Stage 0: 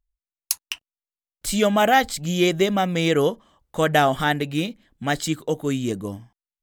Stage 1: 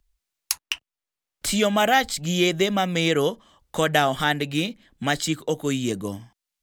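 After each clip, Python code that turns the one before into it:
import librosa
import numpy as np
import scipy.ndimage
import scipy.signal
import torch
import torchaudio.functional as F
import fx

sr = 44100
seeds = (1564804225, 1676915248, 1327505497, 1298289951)

y = fx.peak_eq(x, sr, hz=4400.0, db=4.5, octaves=3.0)
y = fx.band_squash(y, sr, depth_pct=40)
y = y * 10.0 ** (-2.5 / 20.0)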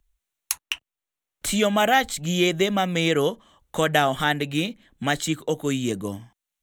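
y = fx.peak_eq(x, sr, hz=4900.0, db=-10.5, octaves=0.26)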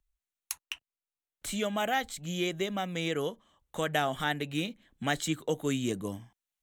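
y = fx.rider(x, sr, range_db=10, speed_s=2.0)
y = y * 10.0 ** (-8.5 / 20.0)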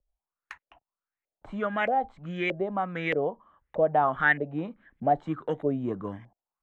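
y = fx.filter_lfo_lowpass(x, sr, shape='saw_up', hz=1.6, low_hz=540.0, high_hz=2200.0, q=4.9)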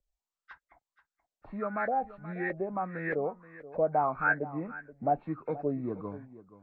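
y = fx.freq_compress(x, sr, knee_hz=1200.0, ratio=1.5)
y = y + 10.0 ** (-16.5 / 20.0) * np.pad(y, (int(478 * sr / 1000.0), 0))[:len(y)]
y = y * 10.0 ** (-4.0 / 20.0)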